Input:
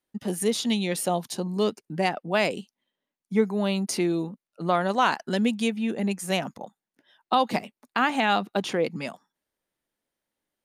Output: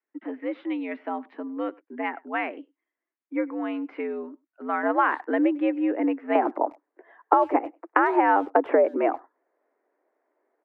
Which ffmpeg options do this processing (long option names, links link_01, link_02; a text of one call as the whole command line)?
ffmpeg -i in.wav -filter_complex "[0:a]asetnsamples=nb_out_samples=441:pad=0,asendcmd='4.83 equalizer g -3;6.35 equalizer g 11',equalizer=frequency=460:width=0.42:gain=-13,acompressor=threshold=-21dB:ratio=10,highpass=frequency=170:width_type=q:width=0.5412,highpass=frequency=170:width_type=q:width=1.307,lowpass=frequency=2000:width_type=q:width=0.5176,lowpass=frequency=2000:width_type=q:width=0.7071,lowpass=frequency=2000:width_type=q:width=1.932,afreqshift=86,asplit=2[link_01][link_02];[link_02]adelay=100,highpass=300,lowpass=3400,asoftclip=type=hard:threshold=-22.5dB,volume=-25dB[link_03];[link_01][link_03]amix=inputs=2:normalize=0,volume=5.5dB" out.wav